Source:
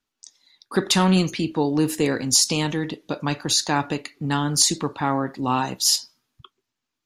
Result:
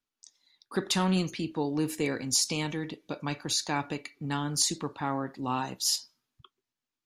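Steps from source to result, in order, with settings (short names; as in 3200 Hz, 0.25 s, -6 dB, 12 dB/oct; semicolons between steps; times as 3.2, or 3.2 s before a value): 1.77–4.55 small resonant body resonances 2300 Hz, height 12 dB; gain -8.5 dB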